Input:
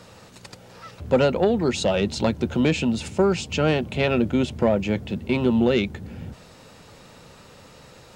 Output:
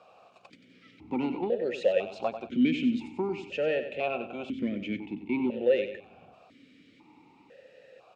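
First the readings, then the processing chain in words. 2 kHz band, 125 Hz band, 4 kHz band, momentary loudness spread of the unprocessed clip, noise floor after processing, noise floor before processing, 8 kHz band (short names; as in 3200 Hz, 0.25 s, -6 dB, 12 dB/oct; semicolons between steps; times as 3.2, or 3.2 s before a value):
-8.0 dB, -18.5 dB, -12.0 dB, 9 LU, -60 dBFS, -48 dBFS, under -20 dB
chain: feedback echo 94 ms, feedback 38%, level -10 dB; vowel sequencer 2 Hz; gain +3 dB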